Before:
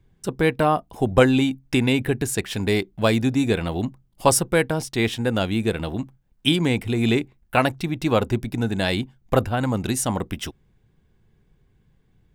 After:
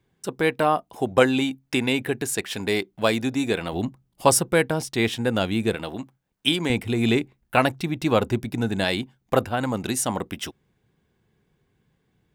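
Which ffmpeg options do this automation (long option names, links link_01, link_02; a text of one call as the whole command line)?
ffmpeg -i in.wav -af "asetnsamples=nb_out_samples=441:pad=0,asendcmd='3.73 highpass f 110;5.75 highpass f 380;6.7 highpass f 100;8.84 highpass f 220',highpass=frequency=320:poles=1" out.wav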